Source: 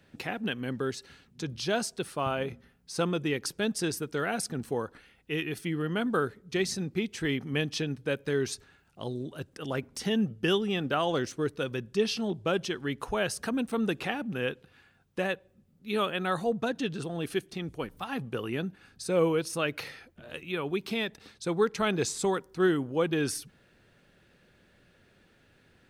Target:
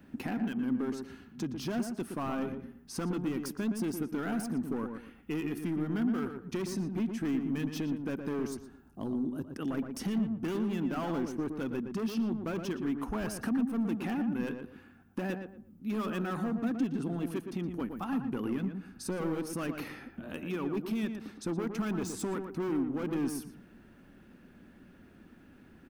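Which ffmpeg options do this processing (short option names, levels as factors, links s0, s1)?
-filter_complex "[0:a]asoftclip=type=hard:threshold=0.0335,equalizer=f=125:t=o:w=1:g=-8,equalizer=f=250:t=o:w=1:g=11,equalizer=f=500:t=o:w=1:g=-9,equalizer=f=2000:t=o:w=1:g=-5,equalizer=f=4000:t=o:w=1:g=-11,equalizer=f=8000:t=o:w=1:g=-8,acompressor=threshold=0.00708:ratio=2,asettb=1/sr,asplit=3[s0][s1][s2];[s0]atrim=end=8.474[s3];[s1]atrim=start=8.47:end=9.56,asetpts=PTS-STARTPTS,afade=t=in:d=0.004:c=qsin,afade=t=out:st=1.086:d=0.004:c=qsin,equalizer=f=2300:w=1.1:g=-11[s4];[s2]atrim=start=9.556[s5];[s3][s4]acrossfade=d=0.004:c1=hsin:c2=qsin[s6];[s6][s5]acrossfade=d=0.004:c1=qsin:c2=hsin,asplit=2[s7][s8];[s8]adelay=117,lowpass=f=1700:p=1,volume=0.501,asplit=2[s9][s10];[s10]adelay=117,lowpass=f=1700:p=1,volume=0.26,asplit=2[s11][s12];[s12]adelay=117,lowpass=f=1700:p=1,volume=0.26[s13];[s7][s9][s11][s13]amix=inputs=4:normalize=0,volume=2.11"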